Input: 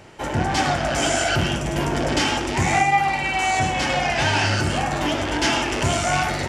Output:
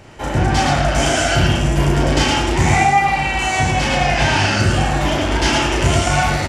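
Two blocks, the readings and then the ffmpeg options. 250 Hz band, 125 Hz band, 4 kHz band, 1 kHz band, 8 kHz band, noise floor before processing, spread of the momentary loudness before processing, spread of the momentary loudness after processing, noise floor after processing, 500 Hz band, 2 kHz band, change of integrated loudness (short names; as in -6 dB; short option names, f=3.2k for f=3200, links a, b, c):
+5.5 dB, +8.0 dB, +4.0 dB, +4.0 dB, +3.5 dB, -27 dBFS, 4 LU, 3 LU, -22 dBFS, +4.5 dB, +4.0 dB, +5.0 dB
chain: -filter_complex "[0:a]lowshelf=f=100:g=9.5,asplit=2[a][b];[b]aecho=0:1:34.99|113.7:0.708|0.708[c];[a][c]amix=inputs=2:normalize=0,volume=1dB"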